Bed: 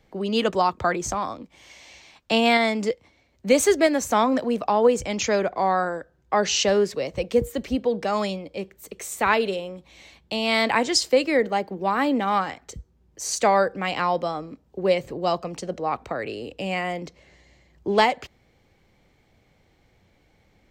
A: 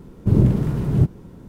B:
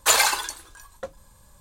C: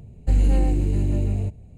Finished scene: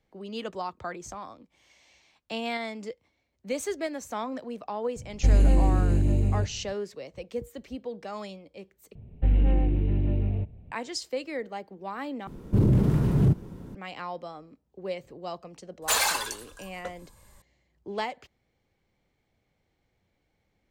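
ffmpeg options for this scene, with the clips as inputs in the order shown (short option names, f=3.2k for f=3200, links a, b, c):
-filter_complex "[3:a]asplit=2[a][b];[0:a]volume=-13dB[c];[b]aresample=8000,aresample=44100[d];[1:a]alimiter=limit=-13dB:level=0:latency=1:release=18[e];[2:a]asoftclip=type=tanh:threshold=-16dB[f];[c]asplit=3[g][h][i];[g]atrim=end=8.954[j];[d]atrim=end=1.77,asetpts=PTS-STARTPTS,volume=-3.5dB[k];[h]atrim=start=10.716:end=12.274[l];[e]atrim=end=1.48,asetpts=PTS-STARTPTS,volume=-0.5dB[m];[i]atrim=start=13.746[n];[a]atrim=end=1.77,asetpts=PTS-STARTPTS,volume=-1dB,afade=t=in:d=0.004:c=hsin,afade=t=out:st=1.766:d=0.004:c=hsin,adelay=4960[o];[f]atrim=end=1.6,asetpts=PTS-STARTPTS,volume=-2.5dB,afade=t=in:d=0.004:c=hsin,afade=t=out:st=1.596:d=0.004:c=hsin,adelay=15820[p];[j][k]acrossfade=d=0.004:c1=hsin:c2=hsin[q];[q][l]acrossfade=d=0.004:c1=hsin:c2=hsin[r];[r][m]acrossfade=d=0.004:c1=hsin:c2=hsin[s];[s][n]acrossfade=d=0.004:c1=hsin:c2=hsin[t];[t][o][p]amix=inputs=3:normalize=0"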